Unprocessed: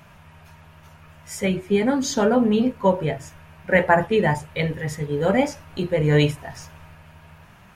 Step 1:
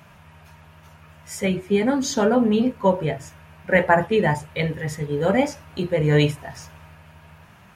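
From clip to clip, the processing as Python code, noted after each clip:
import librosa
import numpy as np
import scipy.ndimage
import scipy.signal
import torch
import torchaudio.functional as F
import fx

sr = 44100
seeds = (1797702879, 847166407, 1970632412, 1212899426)

y = scipy.signal.sosfilt(scipy.signal.butter(2, 54.0, 'highpass', fs=sr, output='sos'), x)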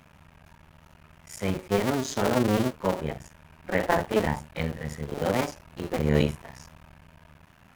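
y = fx.cycle_switch(x, sr, every=2, mode='muted')
y = fx.hpss(y, sr, part='harmonic', gain_db=7)
y = y * 10.0 ** (-7.5 / 20.0)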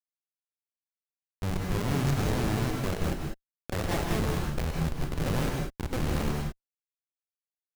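y = fx.schmitt(x, sr, flips_db=-26.0)
y = fx.rev_gated(y, sr, seeds[0], gate_ms=220, shape='rising', drr_db=0.0)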